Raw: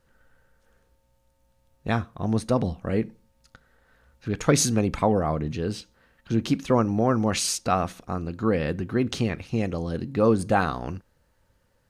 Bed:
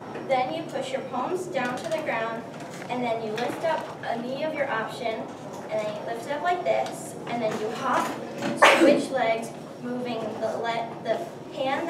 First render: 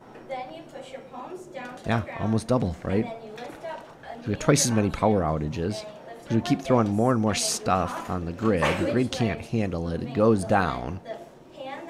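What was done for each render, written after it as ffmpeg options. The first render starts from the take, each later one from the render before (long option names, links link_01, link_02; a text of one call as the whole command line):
ffmpeg -i in.wav -i bed.wav -filter_complex "[1:a]volume=-10dB[link_01];[0:a][link_01]amix=inputs=2:normalize=0" out.wav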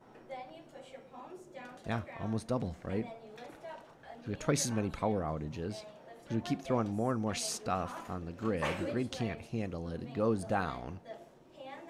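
ffmpeg -i in.wav -af "volume=-10.5dB" out.wav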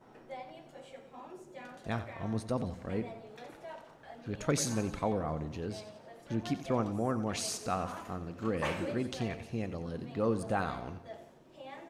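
ffmpeg -i in.wav -af "aecho=1:1:90|180|270|360|450:0.224|0.11|0.0538|0.0263|0.0129" out.wav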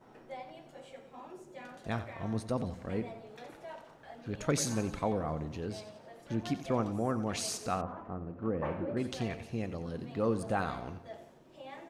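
ffmpeg -i in.wav -filter_complex "[0:a]asettb=1/sr,asplit=3[link_01][link_02][link_03];[link_01]atrim=end=7.814[link_04];[link_02]atrim=start=7.81:end=8.97,asetpts=PTS-STARTPTS,afade=type=in:duration=0.004:curve=qsin,afade=type=out:start_time=1.156:duration=0.004:curve=qsin,lowpass=1100[link_05];[link_03]atrim=start=8.966[link_06];[link_04][link_05]acrossfade=duration=0.004:curve1=hsin:curve2=qsin[link_07];[link_07][link_06]acrossfade=duration=0.004:curve1=qsin:curve2=hsin" out.wav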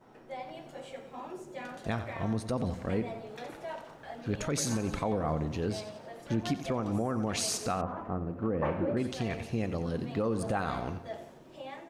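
ffmpeg -i in.wav -af "dynaudnorm=framelen=110:gausssize=7:maxgain=6dB,alimiter=limit=-20.5dB:level=0:latency=1:release=147" out.wav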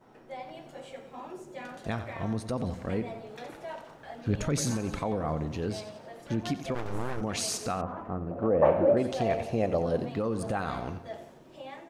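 ffmpeg -i in.wav -filter_complex "[0:a]asettb=1/sr,asplit=3[link_01][link_02][link_03];[link_01]atrim=end=4.274[link_04];[link_02]atrim=start=4.27:end=4.71,asetpts=PTS-STARTPTS,afade=type=in:duration=0.004:curve=qsin,afade=type=out:start_time=0.436:duration=0.004:curve=qsin,lowshelf=frequency=220:gain=8[link_05];[link_03]atrim=start=4.706[link_06];[link_04][link_05]acrossfade=duration=0.004:curve1=hsin:curve2=qsin[link_07];[link_07][link_06]acrossfade=duration=0.004:curve1=qsin:curve2=hsin,asplit=3[link_08][link_09][link_10];[link_08]afade=type=out:start_time=6.74:duration=0.02[link_11];[link_09]aeval=exprs='abs(val(0))':channel_layout=same,afade=type=in:start_time=6.74:duration=0.02,afade=type=out:start_time=7.2:duration=0.02[link_12];[link_10]afade=type=in:start_time=7.2:duration=0.02[link_13];[link_11][link_12][link_13]amix=inputs=3:normalize=0,asettb=1/sr,asplit=3[link_14][link_15][link_16];[link_14]atrim=end=8.314[link_17];[link_15]atrim=start=8.31:end=10.09,asetpts=PTS-STARTPTS,afade=type=in:duration=0.004:curve=qsin,afade=type=out:start_time=1.776:duration=0.004:curve=qsin,equalizer=frequency=630:width_type=o:width=0.95:gain=14[link_18];[link_16]atrim=start=10.086[link_19];[link_17][link_18]acrossfade=duration=0.004:curve1=hsin:curve2=qsin[link_20];[link_20][link_19]acrossfade=duration=0.004:curve1=qsin:curve2=hsin" out.wav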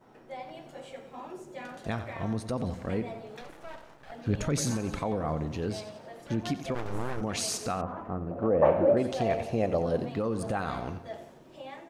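ffmpeg -i in.wav -filter_complex "[0:a]asettb=1/sr,asplit=3[link_01][link_02][link_03];[link_01]atrim=end=3.414[link_04];[link_02]atrim=start=3.41:end=4.12,asetpts=PTS-STARTPTS,afade=type=in:duration=0.004:curve=qsin,afade=type=out:start_time=0.706:duration=0.004:curve=qsin,aeval=exprs='max(val(0),0)':channel_layout=same[link_05];[link_03]atrim=start=4.116[link_06];[link_04][link_05]acrossfade=duration=0.004:curve1=hsin:curve2=qsin[link_07];[link_07][link_06]acrossfade=duration=0.004:curve1=qsin:curve2=hsin" out.wav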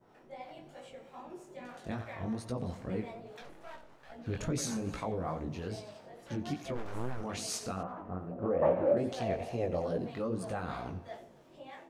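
ffmpeg -i in.wav -filter_complex "[0:a]flanger=delay=16:depth=6.9:speed=2.4,acrossover=split=540[link_01][link_02];[link_01]aeval=exprs='val(0)*(1-0.5/2+0.5/2*cos(2*PI*3.1*n/s))':channel_layout=same[link_03];[link_02]aeval=exprs='val(0)*(1-0.5/2-0.5/2*cos(2*PI*3.1*n/s))':channel_layout=same[link_04];[link_03][link_04]amix=inputs=2:normalize=0" out.wav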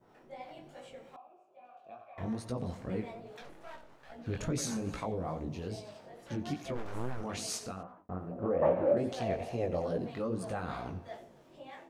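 ffmpeg -i in.wav -filter_complex "[0:a]asettb=1/sr,asplit=3[link_01][link_02][link_03];[link_01]atrim=end=1.164[link_04];[link_02]atrim=start=1.16:end=2.18,asetpts=PTS-STARTPTS,afade=type=in:duration=0.004:curve=qsin,afade=type=out:start_time=1.016:duration=0.004:curve=qsin,asplit=3[link_05][link_06][link_07];[link_05]bandpass=frequency=730:width_type=q:width=8,volume=0dB[link_08];[link_06]bandpass=frequency=1090:width_type=q:width=8,volume=-6dB[link_09];[link_07]bandpass=frequency=2440:width_type=q:width=8,volume=-9dB[link_10];[link_08][link_09][link_10]amix=inputs=3:normalize=0[link_11];[link_03]atrim=start=2.176[link_12];[link_04][link_11]acrossfade=duration=0.004:curve1=hsin:curve2=qsin[link_13];[link_13][link_12]acrossfade=duration=0.004:curve1=qsin:curve2=hsin,asettb=1/sr,asplit=3[link_14][link_15][link_16];[link_14]atrim=end=5.064[link_17];[link_15]atrim=start=5.06:end=5.85,asetpts=PTS-STARTPTS,afade=type=in:duration=0.004:curve=qsin,afade=type=out:start_time=0.786:duration=0.004:curve=qsin,equalizer=frequency=1500:width=1.4:gain=-6[link_18];[link_16]atrim=start=5.846[link_19];[link_17][link_18]acrossfade=duration=0.004:curve1=hsin:curve2=qsin[link_20];[link_20][link_19]acrossfade=duration=0.004:curve1=qsin:curve2=hsin,asplit=2[link_21][link_22];[link_21]atrim=end=8.09,asetpts=PTS-STARTPTS,afade=type=out:start_time=7.51:duration=0.58[link_23];[link_22]atrim=start=8.09,asetpts=PTS-STARTPTS,afade=type=in:duration=0.004:curve=hsin[link_24];[link_23][link_24]concat=n=2:v=0:a=1" out.wav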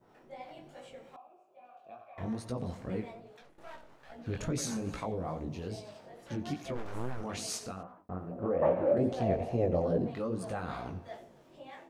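ffmpeg -i in.wav -filter_complex "[0:a]asettb=1/sr,asplit=3[link_01][link_02][link_03];[link_01]atrim=end=8.984[link_04];[link_02]atrim=start=8.98:end=10.15,asetpts=PTS-STARTPTS,afade=type=in:duration=0.004:curve=qsin,afade=type=out:start_time=1.166:duration=0.004:curve=qsin,tiltshelf=frequency=1100:gain=6[link_05];[link_03]atrim=start=10.146[link_06];[link_04][link_05]acrossfade=duration=0.004:curve1=hsin:curve2=qsin[link_07];[link_07][link_06]acrossfade=duration=0.004:curve1=qsin:curve2=hsin,asplit=2[link_08][link_09];[link_08]atrim=end=3.58,asetpts=PTS-STARTPTS,afade=type=out:start_time=2.96:duration=0.62:silence=0.211349[link_10];[link_09]atrim=start=3.58,asetpts=PTS-STARTPTS,afade=type=in:duration=0.004:curve=hsin:silence=0.211349[link_11];[link_10][link_11]concat=n=2:v=0:a=1" out.wav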